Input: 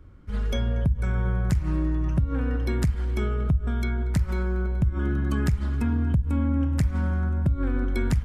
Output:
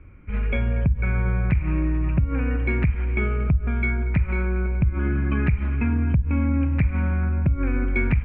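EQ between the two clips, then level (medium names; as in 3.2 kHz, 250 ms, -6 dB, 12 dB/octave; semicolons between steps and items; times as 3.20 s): resonant low-pass 2.4 kHz, resonance Q 13; distance through air 490 m; +2.5 dB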